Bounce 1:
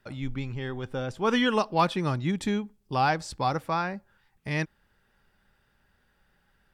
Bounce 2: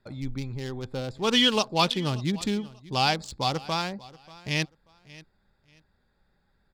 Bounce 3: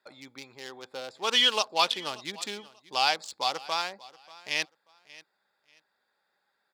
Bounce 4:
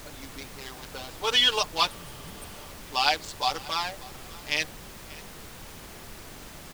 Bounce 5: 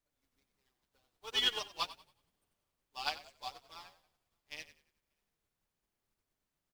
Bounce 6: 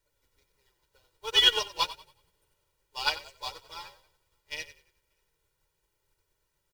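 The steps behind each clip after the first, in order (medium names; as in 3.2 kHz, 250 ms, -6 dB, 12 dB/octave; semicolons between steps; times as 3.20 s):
local Wiener filter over 15 samples; resonant high shelf 2.3 kHz +11 dB, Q 1.5; feedback delay 586 ms, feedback 24%, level -20.5 dB
high-pass 630 Hz 12 dB/octave
spectral replace 1.92–2.63 s, 210–8300 Hz after; comb 6.8 ms, depth 90%; added noise pink -42 dBFS; trim -1.5 dB
treble shelf 9.6 kHz +3.5 dB; on a send: frequency-shifting echo 92 ms, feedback 58%, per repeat -38 Hz, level -6.5 dB; on the sum: upward expansion 2.5:1, over -42 dBFS; trim -9 dB
comb 2.1 ms, depth 97%; trim +6 dB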